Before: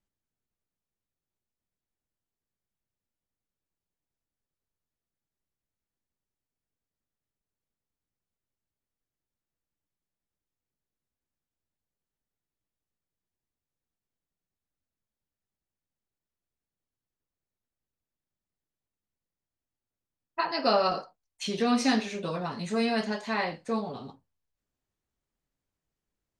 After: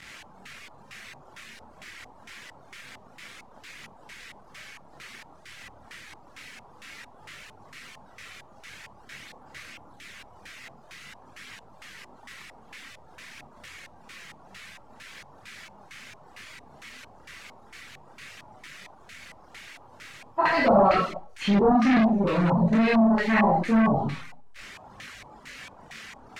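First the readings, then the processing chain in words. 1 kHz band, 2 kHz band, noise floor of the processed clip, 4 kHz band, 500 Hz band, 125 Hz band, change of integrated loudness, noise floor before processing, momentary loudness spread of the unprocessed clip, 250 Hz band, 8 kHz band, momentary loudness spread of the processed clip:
+7.5 dB, +8.0 dB, -52 dBFS, -1.0 dB, +6.5 dB, +13.5 dB, +7.0 dB, under -85 dBFS, 13 LU, +9.5 dB, 0.0 dB, 12 LU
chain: switching spikes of -27.5 dBFS; tone controls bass +15 dB, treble +5 dB; Schroeder reverb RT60 0.56 s, combs from 28 ms, DRR -1.5 dB; chorus voices 2, 0.26 Hz, delay 24 ms, depth 4.5 ms; soft clip -24.5 dBFS, distortion -6 dB; LFO low-pass square 2.2 Hz 870–2100 Hz; reverb removal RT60 0.52 s; gain +8 dB

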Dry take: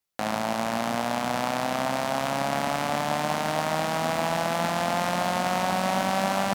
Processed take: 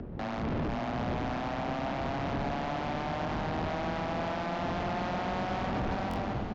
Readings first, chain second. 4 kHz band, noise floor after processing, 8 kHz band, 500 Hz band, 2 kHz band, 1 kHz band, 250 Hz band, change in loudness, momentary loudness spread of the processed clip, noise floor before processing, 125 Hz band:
-11.5 dB, -35 dBFS, -21.5 dB, -7.0 dB, -8.5 dB, -8.0 dB, -3.5 dB, -7.0 dB, 1 LU, -29 dBFS, -1.0 dB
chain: ending faded out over 0.71 s; wind noise 240 Hz -27 dBFS; upward compressor, threshold -35 dBFS; frequency shift +16 Hz; tube stage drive 30 dB, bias 0.5; air absorption 190 m; on a send: echo with dull and thin repeats by turns 0.555 s, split 870 Hz, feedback 64%, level -5.5 dB; on the sum: downsampling 16000 Hz; stuck buffer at 6.09, samples 1024, times 2

